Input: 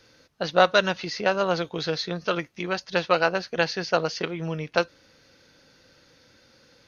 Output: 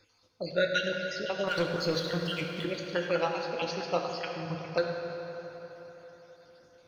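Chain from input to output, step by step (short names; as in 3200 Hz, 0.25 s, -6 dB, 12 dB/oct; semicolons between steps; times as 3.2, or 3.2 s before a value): random spectral dropouts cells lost 53%; 1.47–2.66 sample leveller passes 2; reverb RT60 4.3 s, pre-delay 5 ms, DRR 0.5 dB; gain -7 dB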